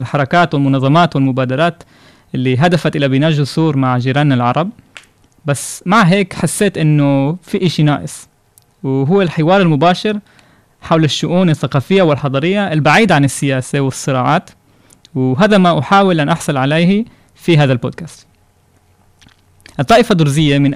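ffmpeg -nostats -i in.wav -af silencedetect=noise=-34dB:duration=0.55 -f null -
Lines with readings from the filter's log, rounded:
silence_start: 18.22
silence_end: 19.22 | silence_duration: 1.00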